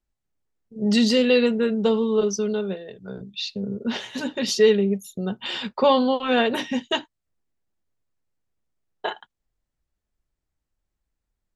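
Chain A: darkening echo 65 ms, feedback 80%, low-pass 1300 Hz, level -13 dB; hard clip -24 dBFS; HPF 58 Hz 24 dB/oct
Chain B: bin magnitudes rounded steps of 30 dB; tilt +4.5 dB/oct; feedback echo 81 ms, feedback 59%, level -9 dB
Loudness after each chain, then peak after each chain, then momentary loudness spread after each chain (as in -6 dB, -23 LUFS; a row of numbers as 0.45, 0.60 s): -28.0, -20.5 LUFS; -18.5, -3.5 dBFS; 10, 15 LU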